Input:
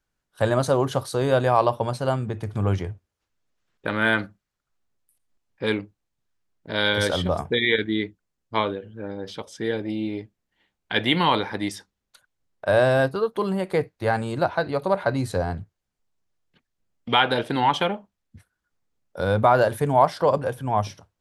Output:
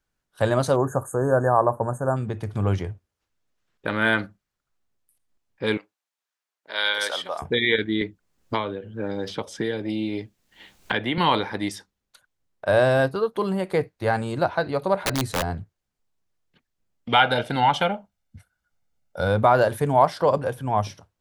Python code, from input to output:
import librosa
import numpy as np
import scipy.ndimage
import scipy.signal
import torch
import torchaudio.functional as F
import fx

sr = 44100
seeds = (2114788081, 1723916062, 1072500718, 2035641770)

y = fx.spec_erase(x, sr, start_s=0.76, length_s=1.4, low_hz=1800.0, high_hz=6300.0)
y = fx.highpass(y, sr, hz=790.0, slope=12, at=(5.77, 7.42))
y = fx.band_squash(y, sr, depth_pct=100, at=(8.01, 11.18))
y = fx.overflow_wrap(y, sr, gain_db=17.0, at=(14.97, 15.41), fade=0.02)
y = fx.comb(y, sr, ms=1.4, depth=0.5, at=(17.13, 19.28))